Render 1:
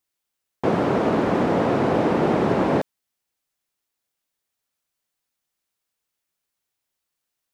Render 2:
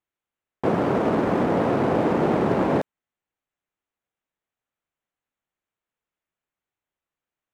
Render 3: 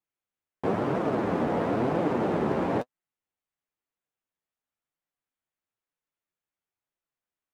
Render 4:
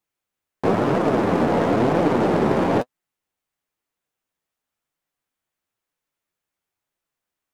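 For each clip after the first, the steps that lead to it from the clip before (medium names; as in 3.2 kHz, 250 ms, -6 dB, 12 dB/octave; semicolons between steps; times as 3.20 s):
local Wiener filter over 9 samples; trim -1 dB
flange 1 Hz, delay 5.3 ms, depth 8.9 ms, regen +34%; trim -1.5 dB
tracing distortion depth 0.096 ms; trim +7.5 dB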